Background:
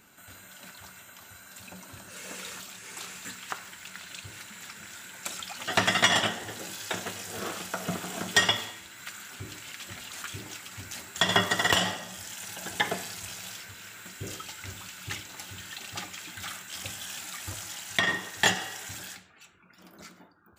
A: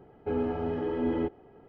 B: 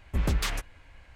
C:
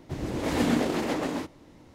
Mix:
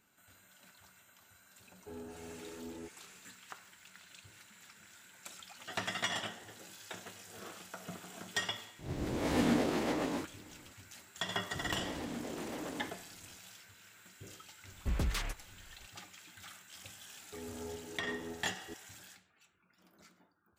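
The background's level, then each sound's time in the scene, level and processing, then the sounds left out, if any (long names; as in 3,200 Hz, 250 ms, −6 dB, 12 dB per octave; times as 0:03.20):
background −13.5 dB
0:01.60: mix in A −18 dB
0:08.79: mix in C −6.5 dB + peak hold with a rise ahead of every peak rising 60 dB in 0.37 s
0:11.44: mix in C −11 dB + downward compressor, threshold −26 dBFS
0:14.72: mix in B −7 dB
0:17.06: mix in A −17.5 dB + delay that plays each chunk backwards 484 ms, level 0 dB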